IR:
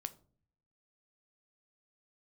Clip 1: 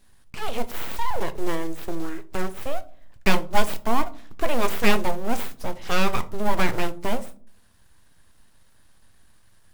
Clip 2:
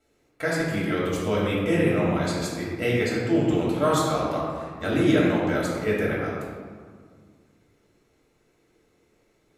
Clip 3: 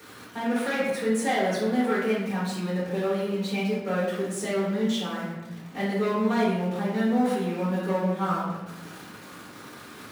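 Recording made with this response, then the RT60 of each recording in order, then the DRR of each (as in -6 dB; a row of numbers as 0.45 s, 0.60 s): 1; no single decay rate, 1.8 s, 1.0 s; 10.5 dB, -5.5 dB, -11.5 dB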